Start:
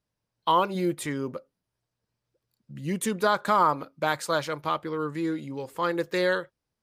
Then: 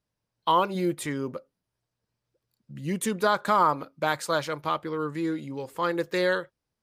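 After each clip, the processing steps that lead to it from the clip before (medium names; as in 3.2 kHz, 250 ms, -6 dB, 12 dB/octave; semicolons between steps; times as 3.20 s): no audible change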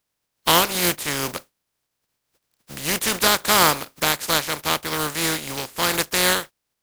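spectral contrast reduction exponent 0.32; trim +5.5 dB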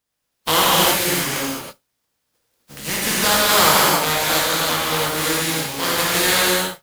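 gated-style reverb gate 360 ms flat, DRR -7 dB; trim -4 dB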